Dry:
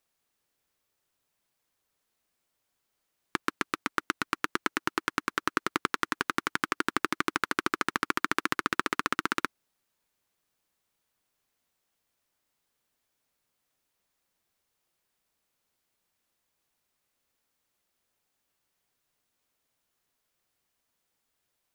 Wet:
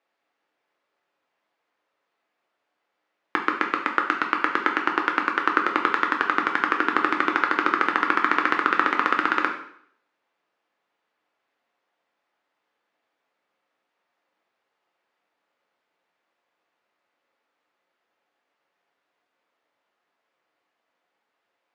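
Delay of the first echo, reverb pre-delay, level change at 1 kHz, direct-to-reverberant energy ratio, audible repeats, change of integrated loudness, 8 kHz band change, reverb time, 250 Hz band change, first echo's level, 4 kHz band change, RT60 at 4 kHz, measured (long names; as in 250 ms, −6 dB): no echo audible, 5 ms, +9.5 dB, 1.5 dB, no echo audible, +8.0 dB, below −10 dB, 0.60 s, +5.5 dB, no echo audible, +1.0 dB, 0.60 s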